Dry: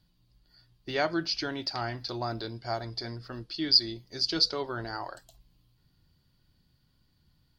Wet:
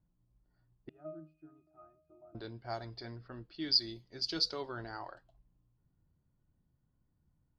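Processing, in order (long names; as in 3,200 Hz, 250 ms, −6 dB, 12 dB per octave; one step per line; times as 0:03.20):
0:00.89–0:02.35: resonances in every octave D#, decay 0.36 s
low-pass that shuts in the quiet parts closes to 980 Hz, open at −25.5 dBFS
level −7 dB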